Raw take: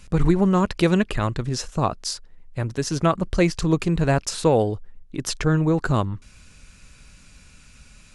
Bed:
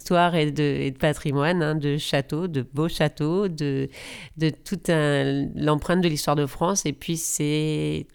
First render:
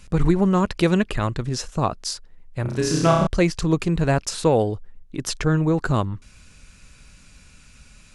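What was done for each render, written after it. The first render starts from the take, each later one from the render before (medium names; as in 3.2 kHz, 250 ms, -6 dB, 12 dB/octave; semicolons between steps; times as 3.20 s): 2.62–3.27 s: flutter echo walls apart 5.4 m, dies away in 0.88 s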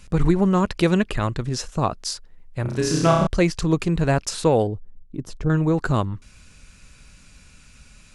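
4.67–5.50 s: FFT filter 220 Hz 0 dB, 950 Hz -9 dB, 1.7 kHz -16 dB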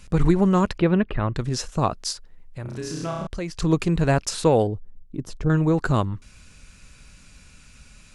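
0.78–1.35 s: distance through air 440 m; 2.12–3.60 s: compression 2:1, threshold -35 dBFS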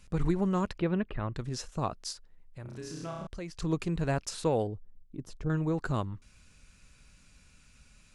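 trim -10 dB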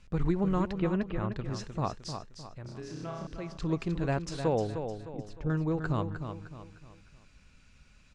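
distance through air 93 m; feedback delay 306 ms, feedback 39%, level -8 dB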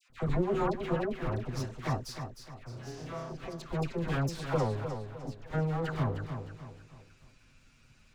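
comb filter that takes the minimum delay 7.8 ms; phase dispersion lows, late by 97 ms, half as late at 1.1 kHz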